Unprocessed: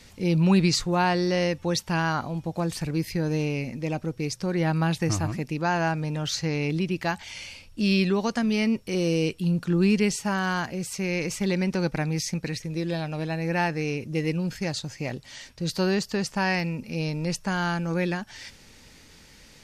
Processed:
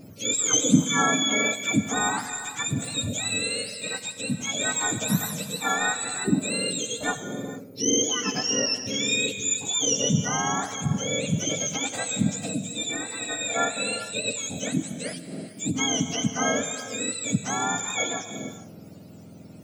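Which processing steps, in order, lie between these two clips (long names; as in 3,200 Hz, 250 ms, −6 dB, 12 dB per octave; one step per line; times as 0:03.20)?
frequency axis turned over on the octave scale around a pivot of 1,100 Hz
reverb whose tail is shaped and stops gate 480 ms flat, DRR 9 dB
level +1.5 dB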